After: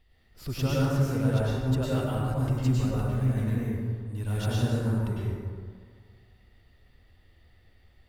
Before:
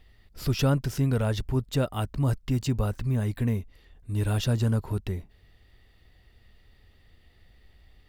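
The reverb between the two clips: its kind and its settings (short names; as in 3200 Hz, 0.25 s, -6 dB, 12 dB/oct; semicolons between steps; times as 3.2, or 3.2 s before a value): plate-style reverb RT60 1.9 s, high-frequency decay 0.45×, pre-delay 90 ms, DRR -7 dB; gain -8.5 dB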